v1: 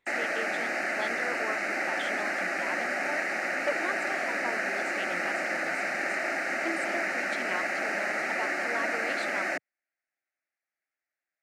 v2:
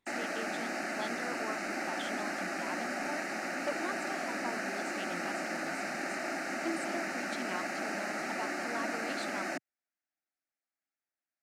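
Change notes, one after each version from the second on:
master: add graphic EQ 250/500/2000 Hz +4/-7/-10 dB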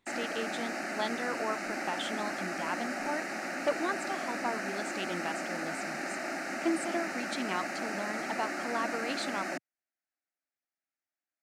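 speech +6.5 dB

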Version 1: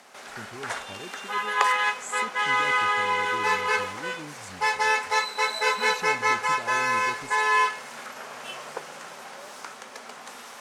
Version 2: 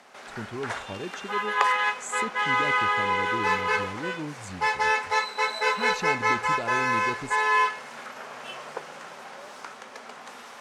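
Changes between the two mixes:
speech +7.0 dB; master: add treble shelf 6.2 kHz -10 dB

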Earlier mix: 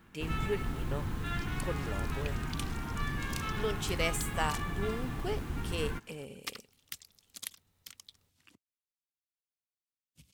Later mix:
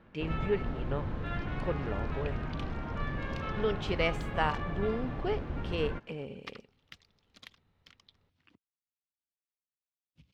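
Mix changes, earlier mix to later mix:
speech +4.5 dB; first sound: add peaking EQ 570 Hz +14 dB 0.46 oct; master: add distance through air 260 m

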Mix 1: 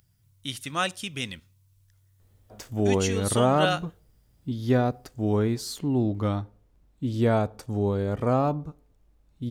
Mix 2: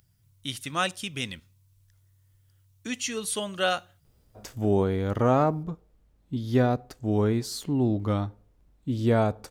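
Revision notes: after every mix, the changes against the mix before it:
background: entry +1.85 s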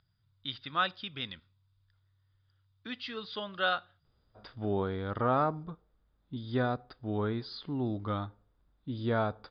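master: add rippled Chebyshev low-pass 5 kHz, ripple 9 dB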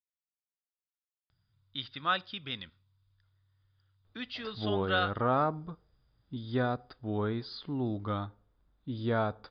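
speech: entry +1.30 s

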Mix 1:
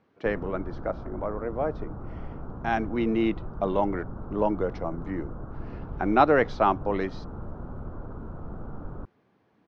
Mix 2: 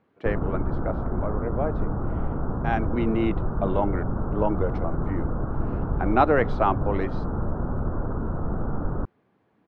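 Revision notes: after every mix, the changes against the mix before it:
background +10.5 dB; master: remove resonant low-pass 5.9 kHz, resonance Q 2.6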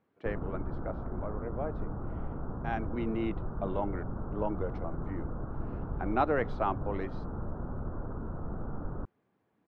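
speech -8.5 dB; background -10.0 dB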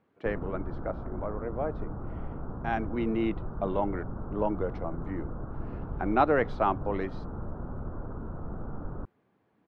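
speech +4.5 dB

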